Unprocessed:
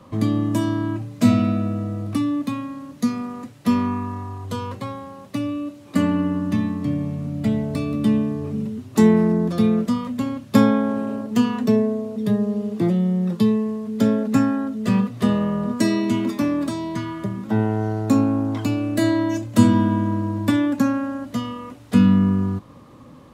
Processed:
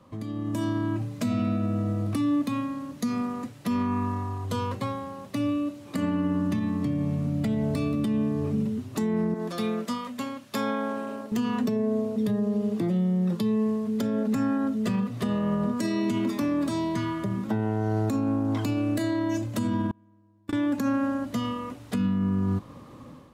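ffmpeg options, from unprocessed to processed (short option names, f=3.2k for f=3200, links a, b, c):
-filter_complex "[0:a]asettb=1/sr,asplit=3[a][b][c];[a]atrim=end=9.344[d];[b]atrim=start=9.34:end=11.32,asetpts=PTS-STARTPTS,afade=t=in:d=0.004:c=qsin,afade=t=out:st=1.976:d=0.004:c=qsin,highpass=f=770:p=1[e];[c]atrim=start=11.316[f];[d][e]acrossfade=d=0.004:c1=hsin:c2=qsin[g];[g][f]acrossfade=d=0.004:c1=qsin:c2=hsin,asettb=1/sr,asplit=3[h][i][j];[h]atrim=end=19.914[k];[i]atrim=start=19.91:end=20.53,asetpts=PTS-STARTPTS,afade=t=in:d=0.004:c=qsin,afade=t=out:st=0.616:d=0.004:c=qsin,agate=range=-37dB:threshold=-14dB:ratio=16:release=100:detection=peak[l];[j]atrim=start=20.526[m];[k][l]acrossfade=d=0.004:c1=hsin:c2=qsin[n];[n][m]acrossfade=d=0.004:c1=qsin:c2=hsin,acompressor=threshold=-18dB:ratio=6,alimiter=limit=-18.5dB:level=0:latency=1:release=82,dynaudnorm=f=330:g=3:m=8.5dB,volume=-8.5dB"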